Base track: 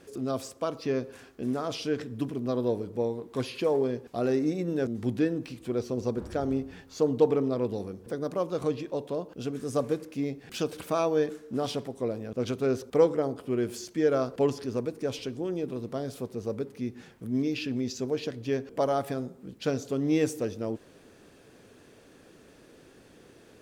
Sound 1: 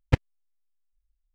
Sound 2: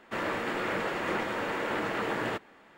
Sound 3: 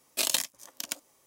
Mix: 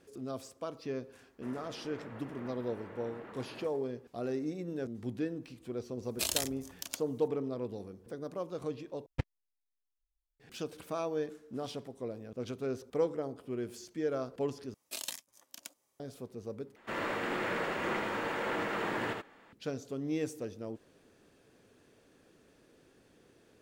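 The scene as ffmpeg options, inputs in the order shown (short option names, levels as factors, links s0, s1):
-filter_complex "[2:a]asplit=2[s0][s1];[3:a]asplit=2[s2][s3];[0:a]volume=0.355[s4];[s0]lowpass=f=1200:p=1[s5];[s1]aecho=1:1:79:0.668[s6];[s4]asplit=4[s7][s8][s9][s10];[s7]atrim=end=9.064[s11];[1:a]atrim=end=1.34,asetpts=PTS-STARTPTS,volume=0.224[s12];[s8]atrim=start=10.396:end=14.744[s13];[s3]atrim=end=1.26,asetpts=PTS-STARTPTS,volume=0.224[s14];[s9]atrim=start=15.996:end=16.764[s15];[s6]atrim=end=2.77,asetpts=PTS-STARTPTS,volume=0.596[s16];[s10]atrim=start=19.526[s17];[s5]atrim=end=2.77,asetpts=PTS-STARTPTS,volume=0.158,afade=t=in:d=0.004:c=hsin,afade=t=out:st=2.766:d=0.004:c=hsin,adelay=1300[s18];[s2]atrim=end=1.26,asetpts=PTS-STARTPTS,volume=0.531,afade=t=in:d=0.004:c=hsin,afade=t=out:st=1.256:d=0.004:c=hsin,adelay=6020[s19];[s11][s12]acrossfade=d=0.004:c1=hsin:c2=hsin[s20];[s20][s13]acrossfade=d=0.004:c1=hsin:c2=hsin[s21];[s21][s14]acrossfade=d=0.004:c1=hsin:c2=hsin[s22];[s22][s15]acrossfade=d=0.004:c1=hsin:c2=hsin[s23];[s23][s16]acrossfade=d=0.004:c1=hsin:c2=hsin[s24];[s24][s17]acrossfade=d=0.004:c1=hsin:c2=hsin[s25];[s25][s18][s19]amix=inputs=3:normalize=0"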